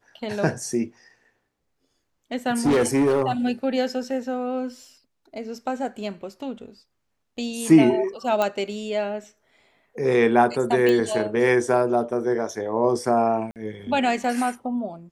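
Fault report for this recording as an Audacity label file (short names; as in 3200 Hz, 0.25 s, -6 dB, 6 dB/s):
2.650000	3.320000	clipped -15.5 dBFS
8.420000	8.420000	pop -10 dBFS
10.890000	10.890000	pop
13.510000	13.560000	gap 48 ms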